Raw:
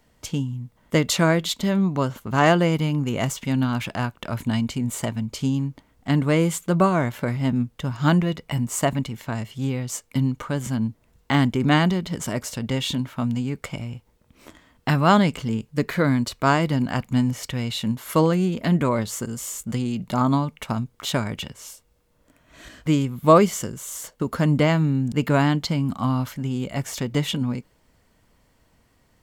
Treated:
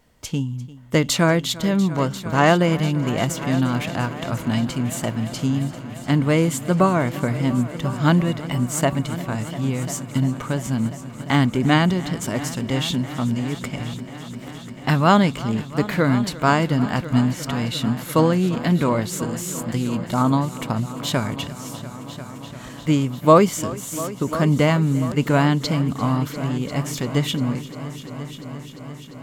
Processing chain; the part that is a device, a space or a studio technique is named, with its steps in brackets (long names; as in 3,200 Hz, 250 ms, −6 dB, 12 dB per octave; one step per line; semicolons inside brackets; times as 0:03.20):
multi-head tape echo (echo machine with several playback heads 347 ms, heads all three, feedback 69%, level −19 dB; tape wow and flutter 19 cents)
level +1.5 dB